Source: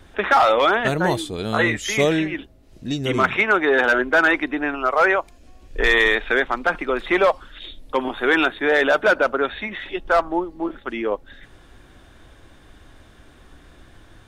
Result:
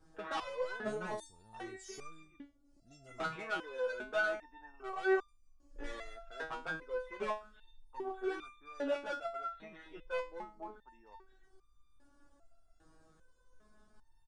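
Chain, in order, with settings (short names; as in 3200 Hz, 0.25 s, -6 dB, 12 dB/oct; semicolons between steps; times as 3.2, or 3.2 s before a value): band shelf 2600 Hz -12.5 dB 1.3 oct; hard clip -16 dBFS, distortion -12 dB; downsampling 22050 Hz; stepped resonator 2.5 Hz 160–1200 Hz; gain -3 dB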